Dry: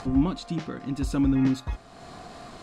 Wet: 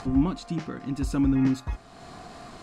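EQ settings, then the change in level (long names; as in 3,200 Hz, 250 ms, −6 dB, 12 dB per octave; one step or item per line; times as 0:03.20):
parametric band 540 Hz −3 dB 0.42 octaves
dynamic equaliser 3,600 Hz, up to −5 dB, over −56 dBFS, Q 3
0.0 dB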